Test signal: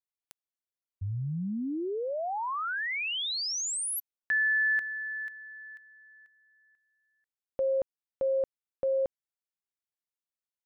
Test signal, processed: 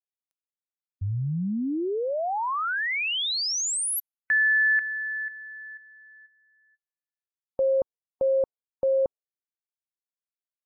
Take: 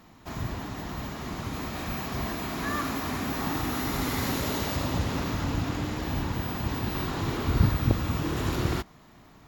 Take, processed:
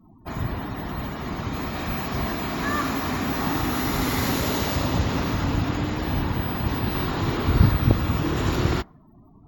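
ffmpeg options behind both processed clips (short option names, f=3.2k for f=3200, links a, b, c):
-af "afftdn=nr=36:nf=-49,volume=5dB"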